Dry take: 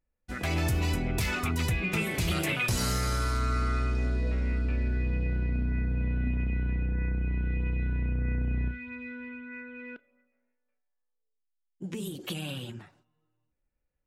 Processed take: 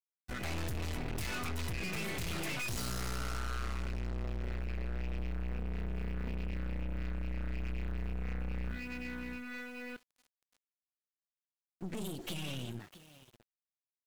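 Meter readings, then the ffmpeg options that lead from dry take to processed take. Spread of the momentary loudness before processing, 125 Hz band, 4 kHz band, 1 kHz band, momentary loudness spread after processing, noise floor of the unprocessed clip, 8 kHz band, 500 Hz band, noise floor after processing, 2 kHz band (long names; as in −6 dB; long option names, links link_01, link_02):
13 LU, −10.0 dB, −6.5 dB, −8.0 dB, 7 LU, −79 dBFS, −7.0 dB, −7.0 dB, below −85 dBFS, −8.0 dB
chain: -af "aecho=1:1:649:0.126,aeval=exprs='val(0)*gte(abs(val(0)),0.00237)':channel_layout=same,aeval=exprs='(tanh(89.1*val(0)+0.8)-tanh(0.8))/89.1':channel_layout=same,volume=2.5dB"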